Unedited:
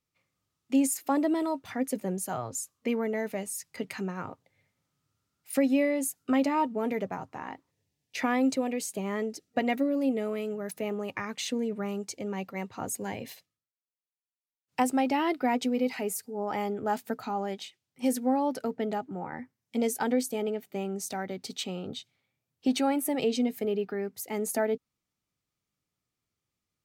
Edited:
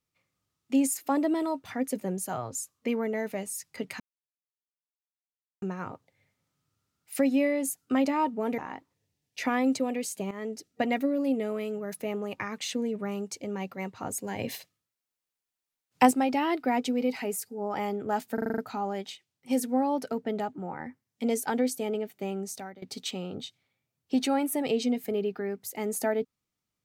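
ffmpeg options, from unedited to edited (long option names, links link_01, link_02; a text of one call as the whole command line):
ffmpeg -i in.wav -filter_complex "[0:a]asplit=13[link_01][link_02][link_03][link_04][link_05][link_06][link_07][link_08][link_09][link_10][link_11][link_12][link_13];[link_01]atrim=end=4,asetpts=PTS-STARTPTS,afade=type=out:start_time=3.996:duration=0.004:curve=hsin,apad=pad_dur=1.62[link_14];[link_02]atrim=start=4:end=6.962,asetpts=PTS-STARTPTS,afade=type=in:duration=0.004:curve=hsin[link_15];[link_03]atrim=start=7.348:end=9.08,asetpts=PTS-STARTPTS,afade=type=out:start_time=1.728:duration=0.004:curve=hsin:silence=0.223872[link_16];[link_04]atrim=start=9.08:end=13.162,asetpts=PTS-STARTPTS,afade=type=in:duration=0.37:curve=qsin:silence=0.223872[link_17];[link_05]atrim=start=13.158:end=14.882,asetpts=PTS-STARTPTS,volume=6.5dB[link_18];[link_06]atrim=start=14.878:end=17.152[link_19];[link_07]atrim=start=17.108:end=17.152[link_20];[link_08]atrim=start=17.108:end=17.152[link_21];[link_09]atrim=start=17.108:end=17.152[link_22];[link_10]atrim=start=17.108:end=17.152[link_23];[link_11]atrim=start=17.108:end=17.152[link_24];[link_12]atrim=start=17.108:end=21.35,asetpts=PTS-STARTPTS,afade=type=out:start_time=3.822:duration=0.42:silence=0.112202[link_25];[link_13]atrim=start=21.35,asetpts=PTS-STARTPTS,afade=type=in:duration=0.004:curve=hsin:silence=0.112202[link_26];[link_14][link_15]concat=n=2:v=0:a=1[link_27];[link_16][link_17]concat=n=2:v=0:a=1[link_28];[link_27][link_28]acrossfade=duration=0.004:curve1=hsin:curve2=hsin[link_29];[link_29][link_18]acrossfade=duration=0.004:curve1=hsin:curve2=hsin[link_30];[link_30][link_19]acrossfade=duration=0.004:curve1=hsin:curve2=hsin[link_31];[link_31][link_20]acrossfade=duration=0.004:curve1=hsin:curve2=hsin[link_32];[link_32][link_21]acrossfade=duration=0.004:curve1=hsin:curve2=hsin[link_33];[link_33][link_22]acrossfade=duration=0.004:curve1=hsin:curve2=hsin[link_34];[link_34][link_23]acrossfade=duration=0.004:curve1=hsin:curve2=hsin[link_35];[link_35][link_24]acrossfade=duration=0.004:curve1=hsin:curve2=hsin[link_36];[link_25][link_26]concat=n=2:v=0:a=1[link_37];[link_36][link_37]acrossfade=duration=0.004:curve1=hsin:curve2=hsin" out.wav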